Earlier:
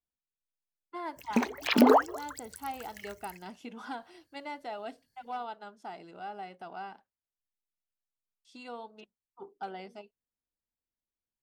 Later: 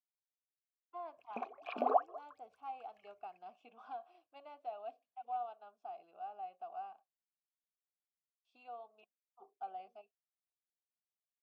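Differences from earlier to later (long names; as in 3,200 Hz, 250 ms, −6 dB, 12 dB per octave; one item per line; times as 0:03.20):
background: add high-shelf EQ 2,800 Hz −10.5 dB
master: add formant filter a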